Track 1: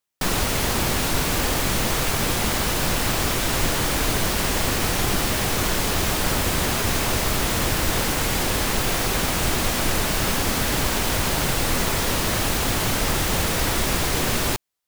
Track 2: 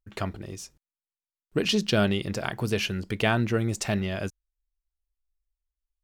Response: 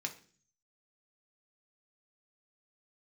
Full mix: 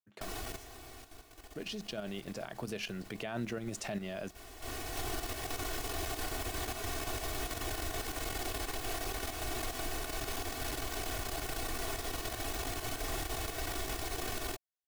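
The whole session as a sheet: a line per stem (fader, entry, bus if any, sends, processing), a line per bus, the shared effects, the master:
−11.0 dB, 0.00 s, no send, comb filter 2.7 ms, depth 92%; automatic ducking −21 dB, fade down 1.10 s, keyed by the second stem
0:02.03 −12 dB → 0:02.62 −3 dB, 0.00 s, send −22 dB, high-pass filter 130 Hz 24 dB per octave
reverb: on, RT60 0.45 s, pre-delay 3 ms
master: parametric band 650 Hz +6 dB 0.36 octaves; output level in coarse steps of 10 dB; brickwall limiter −27.5 dBFS, peak gain reduction 10.5 dB

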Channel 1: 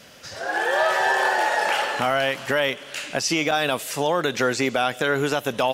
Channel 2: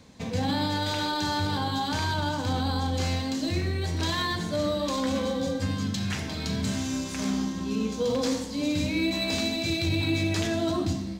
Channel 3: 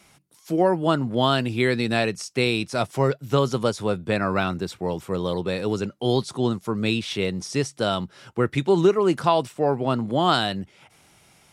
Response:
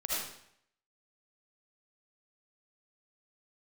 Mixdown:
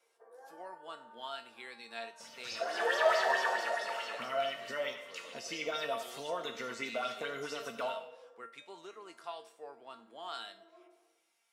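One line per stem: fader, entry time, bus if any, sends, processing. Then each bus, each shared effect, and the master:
0:03.20 −2.5 dB → 0:03.95 −10.5 dB, 2.20 s, send −11.5 dB, low-shelf EQ 80 Hz −11 dB; notch comb filter 820 Hz; auto-filter bell 4.6 Hz 590–5,700 Hz +13 dB
−6.5 dB, 0.00 s, send −21 dB, Chebyshev band-pass filter 360–1,700 Hz, order 5; automatic ducking −15 dB, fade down 1.70 s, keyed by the third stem
−10.0 dB, 0.00 s, send −22 dB, Bessel high-pass filter 890 Hz, order 2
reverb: on, RT60 0.70 s, pre-delay 35 ms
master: tuned comb filter 230 Hz, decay 0.32 s, harmonics all, mix 80%

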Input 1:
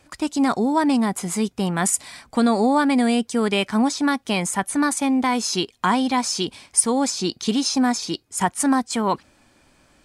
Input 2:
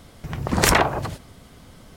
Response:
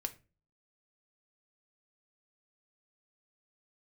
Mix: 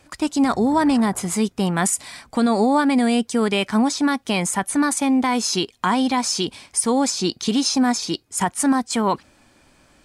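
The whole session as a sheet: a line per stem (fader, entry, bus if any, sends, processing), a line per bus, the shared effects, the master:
+2.0 dB, 0.00 s, no send, no processing
−5.5 dB, 0.20 s, no send, elliptic low-pass filter 1,900 Hz; brickwall limiter −16 dBFS, peak gain reduction 11 dB; automatic ducking −16 dB, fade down 1.80 s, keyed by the first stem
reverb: not used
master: brickwall limiter −9.5 dBFS, peak gain reduction 7 dB

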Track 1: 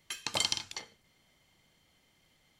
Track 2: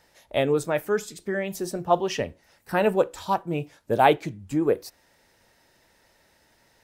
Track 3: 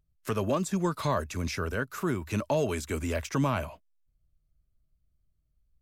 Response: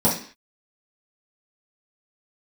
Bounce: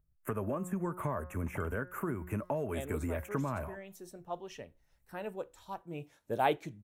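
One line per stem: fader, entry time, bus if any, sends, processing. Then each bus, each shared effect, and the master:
−11.5 dB, 1.20 s, bus A, no send, spectral tilt −3 dB per octave
0:05.68 −19 dB → 0:06.12 −11 dB, 2.40 s, no bus, no send, high-shelf EQ 8,700 Hz +4 dB; notch filter 4,800 Hz, Q 9
−1.0 dB, 0.00 s, bus A, no send, hum removal 180.1 Hz, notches 12
bus A: 0.0 dB, Butterworth band-reject 4,500 Hz, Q 0.57; downward compressor 6 to 1, threshold −31 dBFS, peak gain reduction 8 dB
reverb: not used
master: no processing

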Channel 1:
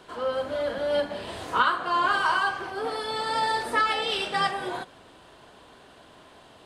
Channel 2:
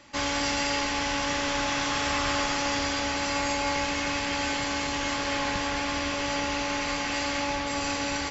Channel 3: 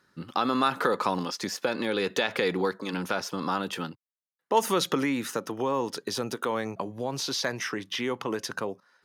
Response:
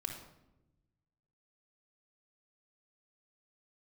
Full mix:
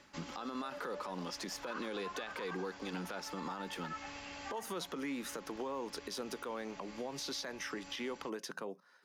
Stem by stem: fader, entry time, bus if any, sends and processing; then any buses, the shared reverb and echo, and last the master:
−17.5 dB, 0.10 s, no bus, no send, Chebyshev band-pass filter 580–2,700 Hz, order 4; tremolo along a rectified sine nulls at 9.1 Hz
−7.0 dB, 0.00 s, bus A, no send, automatic ducking −12 dB, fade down 0.20 s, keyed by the third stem
−1.0 dB, 0.00 s, bus A, no send, Chebyshev high-pass filter 160 Hz, order 4
bus A: 0.0 dB, downward compressor 2.5 to 1, threshold −41 dBFS, peak gain reduction 15 dB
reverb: not used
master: brickwall limiter −31 dBFS, peak gain reduction 8.5 dB

